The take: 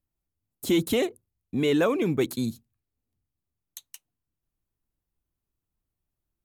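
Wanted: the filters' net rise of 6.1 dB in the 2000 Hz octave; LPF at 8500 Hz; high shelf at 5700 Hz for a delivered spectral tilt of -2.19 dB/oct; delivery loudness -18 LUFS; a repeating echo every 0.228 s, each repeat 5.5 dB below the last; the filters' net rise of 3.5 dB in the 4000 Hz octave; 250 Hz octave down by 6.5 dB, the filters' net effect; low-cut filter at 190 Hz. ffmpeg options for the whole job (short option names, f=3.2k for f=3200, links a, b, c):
-af "highpass=190,lowpass=8.5k,equalizer=f=250:t=o:g=-8,equalizer=f=2k:t=o:g=7.5,equalizer=f=4k:t=o:g=4,highshelf=f=5.7k:g=-8,aecho=1:1:228|456|684|912|1140|1368|1596:0.531|0.281|0.149|0.079|0.0419|0.0222|0.0118,volume=9dB"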